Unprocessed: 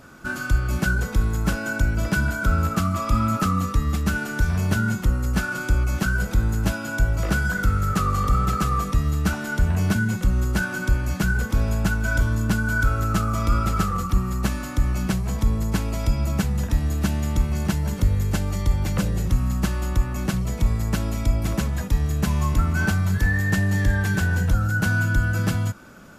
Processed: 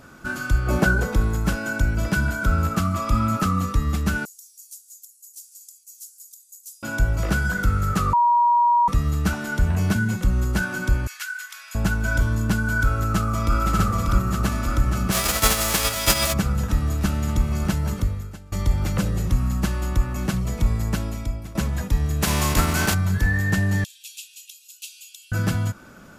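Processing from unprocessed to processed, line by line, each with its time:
0.66–1.38 bell 560 Hz +13.5 dB -> +2.5 dB 2.4 oct
4.25–6.83 inverse Chebyshev high-pass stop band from 1200 Hz, stop band 80 dB
8.13–8.88 bleep 955 Hz -14 dBFS
11.07–11.75 HPF 1500 Hz 24 dB/oct
12.91–13.6 echo throw 0.59 s, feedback 80%, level -3 dB
15.11–16.32 spectral whitening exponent 0.3
17.93–18.52 fade out quadratic, to -21 dB
20.87–21.55 fade out, to -16.5 dB
22.21–22.93 spectral contrast lowered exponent 0.59
23.84–25.32 rippled Chebyshev high-pass 2500 Hz, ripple 3 dB

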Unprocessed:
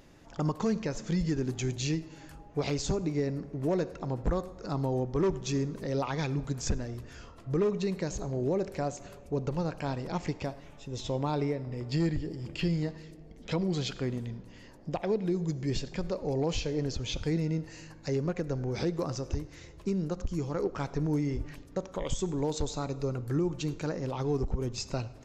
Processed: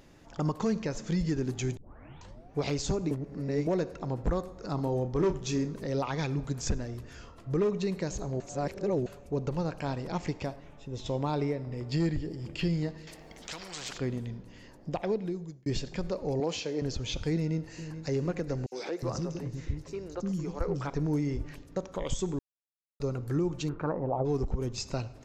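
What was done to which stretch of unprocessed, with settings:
1.77 tape start 0.80 s
3.11–3.67 reverse
4.75–5.72 doubler 33 ms -9.5 dB
8.4–9.06 reverse
10.56–11.06 high shelf 3300 Hz -8.5 dB
13.07–13.98 spectral compressor 4:1
15.06–15.66 fade out
16.4–16.82 HPF 220 Hz
17.35–18.12 echo throw 0.43 s, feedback 75%, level -11.5 dB
18.66–20.9 three bands offset in time highs, mids, lows 60/360 ms, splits 310/3800 Hz
22.39–23 mute
23.68–24.24 synth low-pass 1500 Hz -> 610 Hz, resonance Q 4.3

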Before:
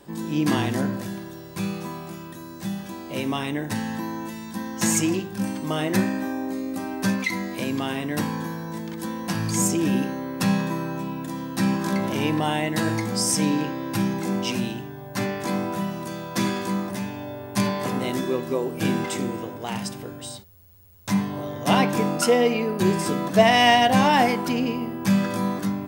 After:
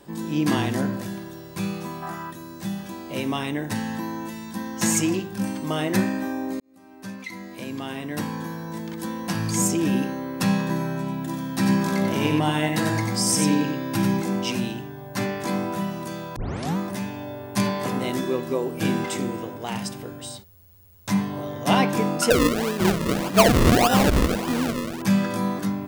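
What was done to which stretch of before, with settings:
2.03–2.3 spectral gain 650–2000 Hz +11 dB
6.6–8.85 fade in
10.6–14.22 echo 92 ms -4.5 dB
16.36 tape start 0.41 s
22.3–25.02 decimation with a swept rate 39× 1.7 Hz

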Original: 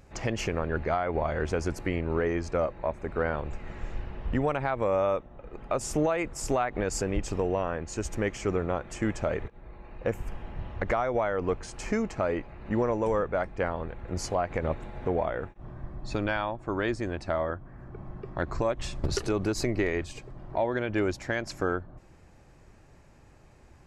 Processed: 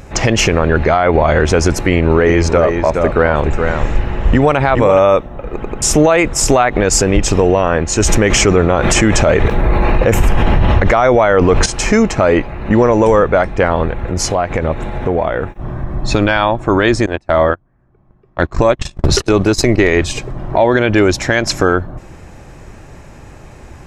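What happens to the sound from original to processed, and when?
1.82–4.99 echo 0.419 s -8.5 dB
5.55 stutter in place 0.09 s, 3 plays
8–11.66 fast leveller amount 70%
14.05–15.91 compressor 2:1, threshold -36 dBFS
17.06–19.84 gate -32 dBFS, range -31 dB
whole clip: notch 4600 Hz, Q 12; dynamic EQ 4600 Hz, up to +5 dB, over -50 dBFS, Q 0.91; maximiser +20.5 dB; gain -1 dB

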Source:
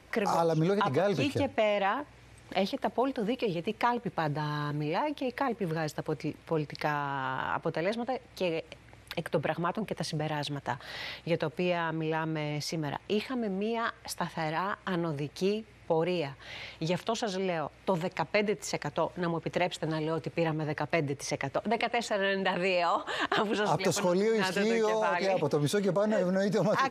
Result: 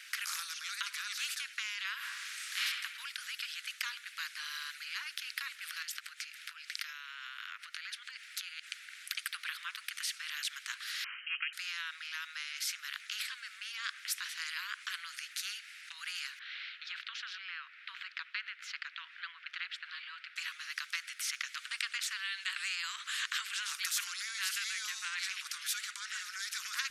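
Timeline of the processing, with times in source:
1.97–2.61 reverb throw, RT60 0.87 s, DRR -10.5 dB
5.82–9.15 compressor, threshold -36 dBFS
11.04–11.53 inverted band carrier 3000 Hz
16.39–20.36 air absorption 380 m
whole clip: steep high-pass 1400 Hz 72 dB/oct; spectral compressor 2:1

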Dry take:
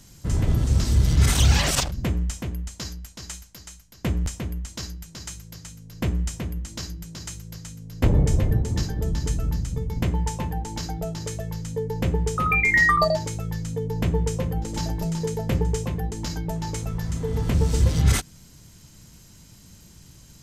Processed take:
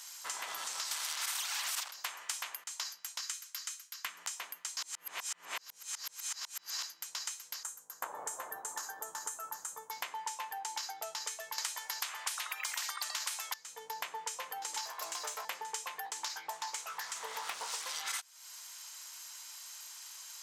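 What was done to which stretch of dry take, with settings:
0.91–2.64 spectral compressor 2:1
3.2–4.18 band shelf 550 Hz -10.5 dB
4.77–6.83 reverse
7.63–9.91 band shelf 3300 Hz -14.5 dB
11.58–13.54 spectral compressor 10:1
14.85–15.45 minimum comb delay 1.8 ms
16.05–17.86 Doppler distortion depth 0.67 ms
whole clip: Chebyshev high-pass 960 Hz, order 3; compressor 6:1, threshold -43 dBFS; gain +6 dB

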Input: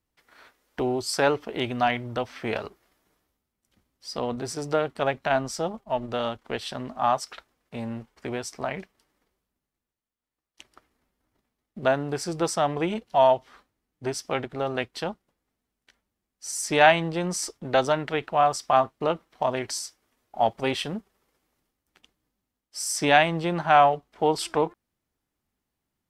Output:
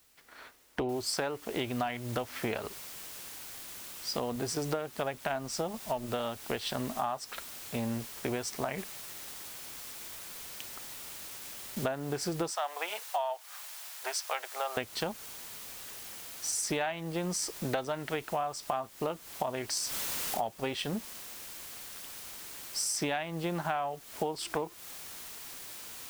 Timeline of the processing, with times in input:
0.89 noise floor step -67 dB -47 dB
8.78–11.86 block floating point 3-bit
12.51–14.77 HPF 660 Hz 24 dB/oct
19.77–20.52 upward compressor, threshold -24 dBFS
whole clip: compressor 16:1, threshold -31 dBFS; gain +2 dB

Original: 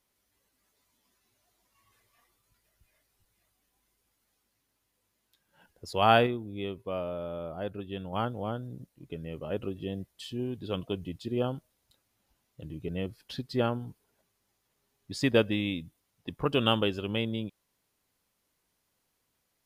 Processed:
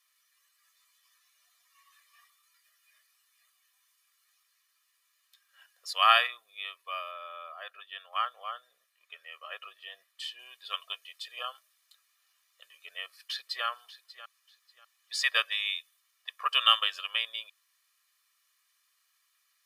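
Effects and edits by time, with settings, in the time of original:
7.11–10.39 tone controls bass +1 dB, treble -6 dB
10.93–11.39 steep high-pass 400 Hz
12.88–13.66 echo throw 0.59 s, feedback 25%, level -15 dB
whole clip: HPF 1200 Hz 24 dB/oct; high shelf 6800 Hz -4.5 dB; comb 1.7 ms, depth 93%; gain +5.5 dB

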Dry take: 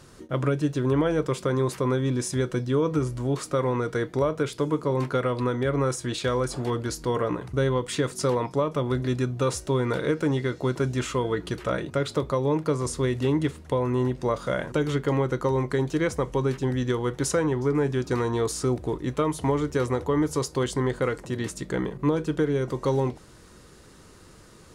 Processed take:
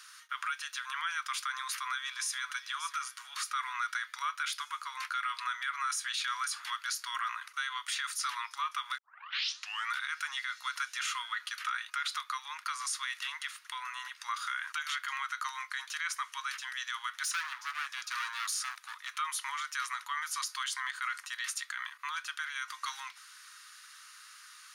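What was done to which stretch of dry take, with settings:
1.57–2.39 echo throw 0.58 s, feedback 30%, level -15.5 dB
8.98 tape start 0.92 s
17.23–19.18 hard clip -24.5 dBFS
whole clip: steep high-pass 1200 Hz 48 dB/oct; notch 7700 Hz, Q 5.7; limiter -29 dBFS; gain +4.5 dB

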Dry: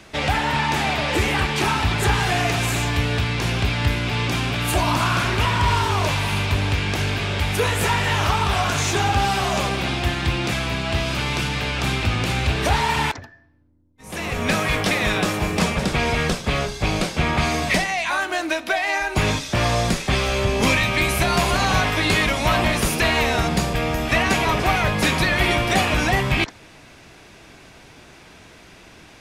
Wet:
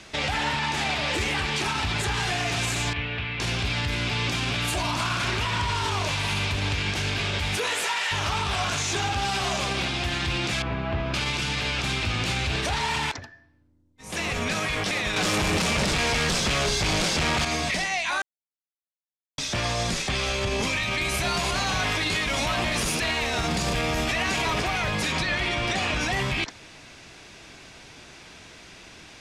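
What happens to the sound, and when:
2.93–3.4 ladder low-pass 3200 Hz, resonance 40%
7.56–8.11 HPF 230 Hz -> 950 Hz
10.62–11.14 LPF 1400 Hz
15.16–17.45 sample leveller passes 5
18.22–19.38 mute
21.12–24.62 zero-crossing step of -28 dBFS
25.12–26.01 Bessel low-pass 7300 Hz
whole clip: LPF 7800 Hz 12 dB/oct; high shelf 2600 Hz +8.5 dB; limiter -14.5 dBFS; gain -3 dB

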